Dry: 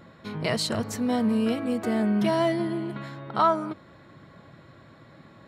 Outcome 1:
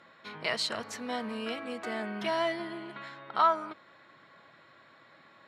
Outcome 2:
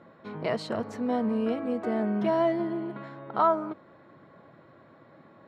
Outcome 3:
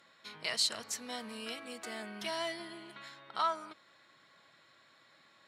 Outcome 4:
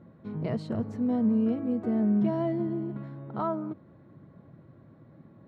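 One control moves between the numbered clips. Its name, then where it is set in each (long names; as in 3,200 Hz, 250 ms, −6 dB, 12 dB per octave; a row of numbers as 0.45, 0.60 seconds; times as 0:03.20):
resonant band-pass, frequency: 2,200, 600, 5,900, 170 Hertz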